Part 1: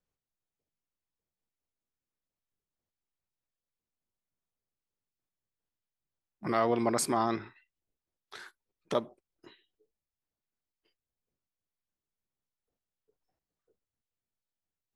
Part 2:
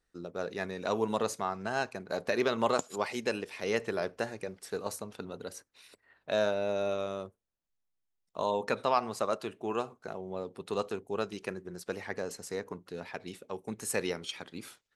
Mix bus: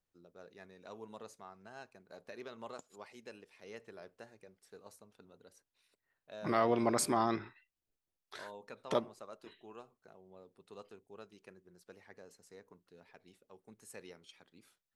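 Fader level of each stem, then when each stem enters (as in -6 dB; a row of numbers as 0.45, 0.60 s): -2.5, -19.0 dB; 0.00, 0.00 s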